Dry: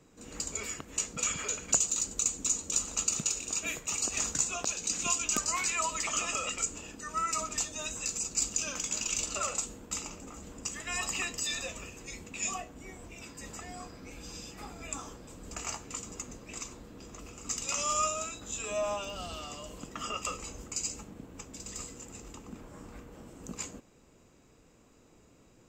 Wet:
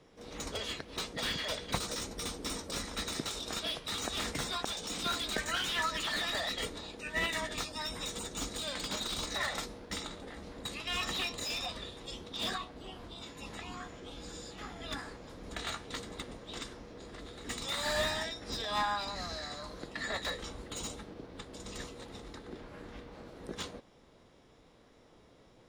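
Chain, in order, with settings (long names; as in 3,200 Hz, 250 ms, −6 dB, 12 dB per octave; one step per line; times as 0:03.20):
formants moved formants +6 semitones
high shelf with overshoot 7,600 Hz −13.5 dB, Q 1.5
slew-rate limiting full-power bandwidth 80 Hz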